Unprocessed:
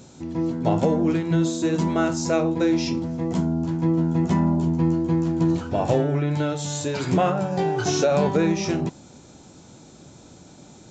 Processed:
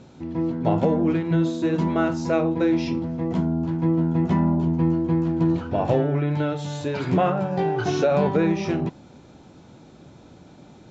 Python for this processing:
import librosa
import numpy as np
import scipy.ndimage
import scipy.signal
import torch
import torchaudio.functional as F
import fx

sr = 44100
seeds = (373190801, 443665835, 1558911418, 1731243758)

y = scipy.signal.sosfilt(scipy.signal.butter(2, 3300.0, 'lowpass', fs=sr, output='sos'), x)